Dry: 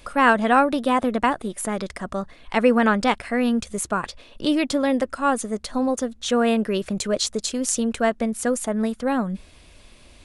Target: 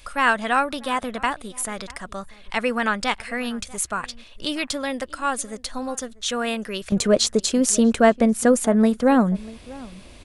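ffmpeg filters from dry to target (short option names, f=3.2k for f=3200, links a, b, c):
-filter_complex "[0:a]asetnsamples=n=441:p=0,asendcmd='6.92 equalizer g 3.5',equalizer=f=290:w=0.31:g=-11.5,asplit=2[a][b];[b]adelay=641.4,volume=-21dB,highshelf=f=4k:g=-14.4[c];[a][c]amix=inputs=2:normalize=0,volume=3dB"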